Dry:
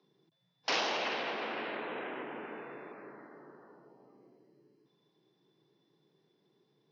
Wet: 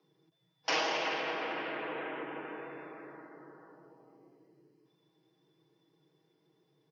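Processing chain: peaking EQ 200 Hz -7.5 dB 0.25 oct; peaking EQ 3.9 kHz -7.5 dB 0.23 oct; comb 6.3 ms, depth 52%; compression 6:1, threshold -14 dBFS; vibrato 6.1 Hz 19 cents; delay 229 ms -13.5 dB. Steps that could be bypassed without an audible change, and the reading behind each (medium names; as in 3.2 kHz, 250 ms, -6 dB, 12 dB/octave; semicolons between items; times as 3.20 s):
compression, threshold -14 dBFS: peak at its input -19.0 dBFS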